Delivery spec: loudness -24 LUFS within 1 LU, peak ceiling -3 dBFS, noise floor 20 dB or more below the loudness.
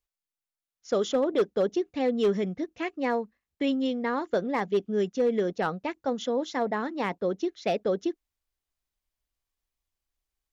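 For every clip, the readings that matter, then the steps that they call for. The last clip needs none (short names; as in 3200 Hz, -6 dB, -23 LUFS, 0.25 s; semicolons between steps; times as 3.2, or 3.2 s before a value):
clipped 0.4%; flat tops at -18.0 dBFS; loudness -28.5 LUFS; peak -18.0 dBFS; loudness target -24.0 LUFS
-> clip repair -18 dBFS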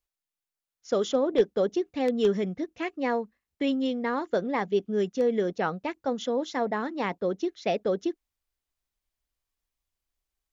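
clipped 0.0%; loudness -28.5 LUFS; peak -10.0 dBFS; loudness target -24.0 LUFS
-> gain +4.5 dB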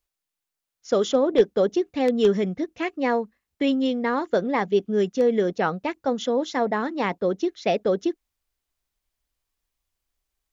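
loudness -24.0 LUFS; peak -5.5 dBFS; noise floor -86 dBFS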